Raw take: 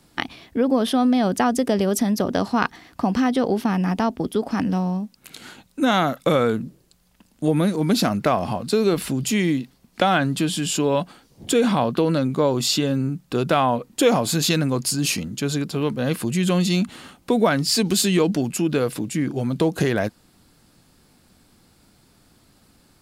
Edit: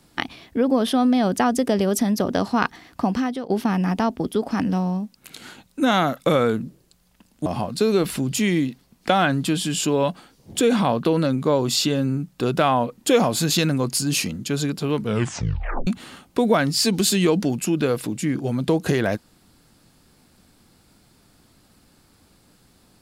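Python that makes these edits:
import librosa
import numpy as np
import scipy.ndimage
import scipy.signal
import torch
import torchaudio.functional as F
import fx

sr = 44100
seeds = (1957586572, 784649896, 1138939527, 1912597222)

y = fx.edit(x, sr, fx.fade_out_to(start_s=3.05, length_s=0.45, floor_db=-16.5),
    fx.cut(start_s=7.46, length_s=0.92),
    fx.tape_stop(start_s=15.92, length_s=0.87), tone=tone)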